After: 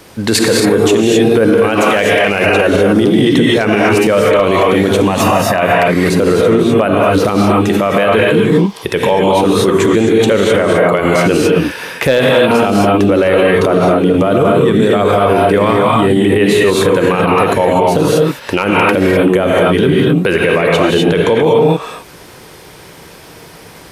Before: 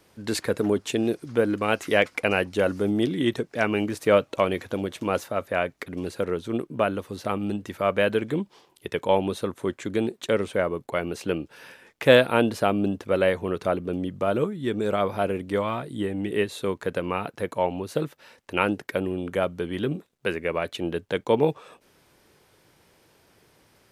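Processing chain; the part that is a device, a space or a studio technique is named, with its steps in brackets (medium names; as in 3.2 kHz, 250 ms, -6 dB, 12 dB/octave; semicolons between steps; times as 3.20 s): 5.05–5.59 s: comb 1.1 ms, depth 60%; gated-style reverb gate 280 ms rising, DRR -1.5 dB; loud club master (compression 2:1, threshold -22 dBFS, peak gain reduction 7.5 dB; hard clipper -11.5 dBFS, distortion -32 dB; loudness maximiser +21 dB); trim -1 dB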